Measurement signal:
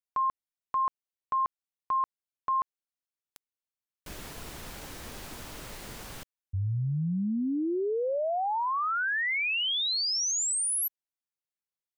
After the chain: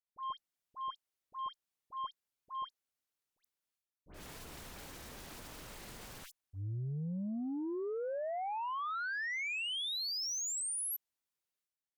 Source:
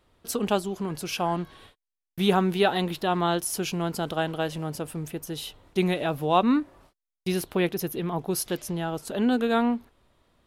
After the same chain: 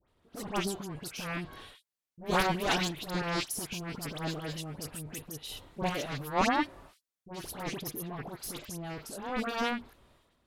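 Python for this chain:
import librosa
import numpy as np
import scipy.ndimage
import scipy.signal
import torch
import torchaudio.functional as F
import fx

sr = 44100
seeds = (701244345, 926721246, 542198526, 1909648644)

y = fx.cheby_harmonics(x, sr, harmonics=(2, 7), levels_db=(-37, -13), full_scale_db=-6.5)
y = fx.transient(y, sr, attack_db=-10, sustain_db=10)
y = fx.dispersion(y, sr, late='highs', ms=85.0, hz=1700.0)
y = y * 10.0 ** (-2.0 / 20.0)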